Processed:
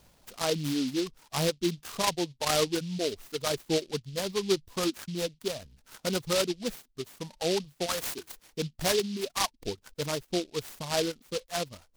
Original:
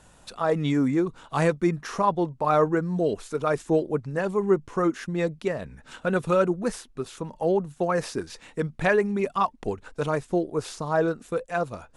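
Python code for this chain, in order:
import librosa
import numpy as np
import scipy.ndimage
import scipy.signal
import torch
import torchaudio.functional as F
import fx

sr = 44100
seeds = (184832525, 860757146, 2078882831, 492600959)

y = fx.dereverb_blind(x, sr, rt60_s=1.7)
y = fx.tilt_eq(y, sr, slope=4.0, at=(7.86, 8.32))
y = fx.noise_mod_delay(y, sr, seeds[0], noise_hz=3800.0, depth_ms=0.14)
y = y * librosa.db_to_amplitude(-5.0)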